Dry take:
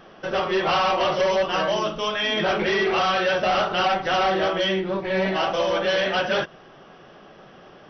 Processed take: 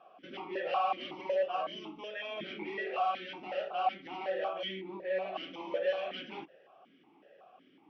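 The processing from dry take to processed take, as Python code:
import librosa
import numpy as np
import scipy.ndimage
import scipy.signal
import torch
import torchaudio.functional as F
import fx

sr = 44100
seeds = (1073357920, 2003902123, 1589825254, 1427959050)

y = fx.rider(x, sr, range_db=3, speed_s=2.0)
y = fx.vowel_held(y, sr, hz=5.4)
y = y * 10.0 ** (-3.5 / 20.0)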